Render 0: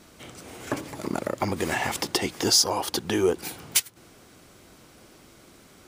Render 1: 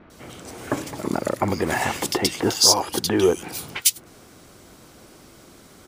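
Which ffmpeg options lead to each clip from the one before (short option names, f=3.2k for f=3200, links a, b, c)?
-filter_complex "[0:a]acrossover=split=2500[a][b];[b]adelay=100[c];[a][c]amix=inputs=2:normalize=0,volume=4.5dB"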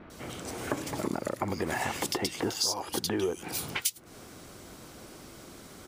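-af "acompressor=threshold=-28dB:ratio=5"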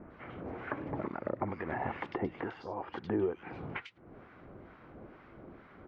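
-filter_complex "[0:a]lowpass=f=2.1k:w=0.5412,lowpass=f=2.1k:w=1.3066,acrossover=split=930[a][b];[a]aeval=exprs='val(0)*(1-0.7/2+0.7/2*cos(2*PI*2.2*n/s))':c=same[c];[b]aeval=exprs='val(0)*(1-0.7/2-0.7/2*cos(2*PI*2.2*n/s))':c=same[d];[c][d]amix=inputs=2:normalize=0"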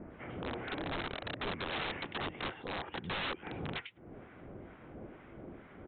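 -af "equalizer=f=1.2k:w=1.6:g=-5.5,aresample=8000,aeval=exprs='(mod(53.1*val(0)+1,2)-1)/53.1':c=same,aresample=44100,volume=3dB"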